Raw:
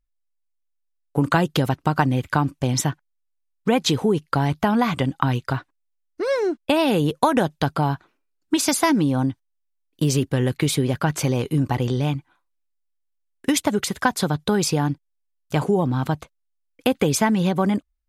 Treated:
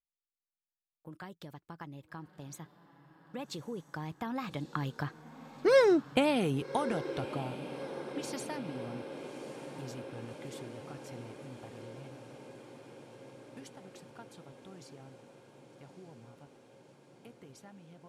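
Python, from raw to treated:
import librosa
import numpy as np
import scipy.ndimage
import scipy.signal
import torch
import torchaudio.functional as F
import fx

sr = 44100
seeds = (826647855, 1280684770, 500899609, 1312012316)

y = fx.doppler_pass(x, sr, speed_mps=31, closest_m=6.2, pass_at_s=5.73)
y = fx.echo_diffused(y, sr, ms=1191, feedback_pct=73, wet_db=-13.0)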